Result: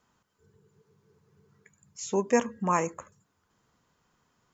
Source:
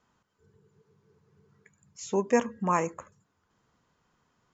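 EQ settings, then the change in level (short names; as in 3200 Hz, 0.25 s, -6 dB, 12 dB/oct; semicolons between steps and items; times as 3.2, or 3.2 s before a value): high shelf 6200 Hz +6.5 dB; 0.0 dB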